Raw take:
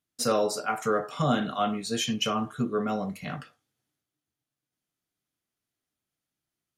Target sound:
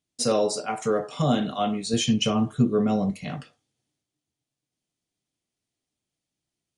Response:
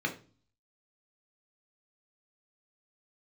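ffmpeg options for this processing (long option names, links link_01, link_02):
-filter_complex "[0:a]asettb=1/sr,asplit=3[link_01][link_02][link_03];[link_01]atrim=end=1.934[link_04];[link_02]atrim=start=1.93:end=3.11,asetpts=PTS-STARTPTS,afade=type=in:duration=0.004:curve=qsin,afade=type=out:start_time=1.176:duration=0.004:curve=qsin,lowshelf=frequency=220:gain=9[link_05];[link_03]atrim=start=3.106[link_06];[link_04][link_05]acrossfade=duration=0.004:curve1=hsin:curve2=qsin[link_07];[link_07][link_06]acrossfade=duration=0.004:curve1=qsin:curve2=hsin,aresample=22050,aresample=44100,equalizer=frequency=1400:width=1.5:gain=-9,volume=3.5dB"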